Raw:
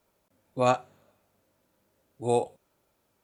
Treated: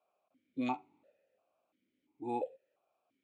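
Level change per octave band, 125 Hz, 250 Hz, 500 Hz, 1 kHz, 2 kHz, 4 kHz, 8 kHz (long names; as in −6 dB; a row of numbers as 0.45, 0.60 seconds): −19.0 dB, −3.5 dB, −15.0 dB, −11.0 dB, −10.5 dB, −13.5 dB, below −25 dB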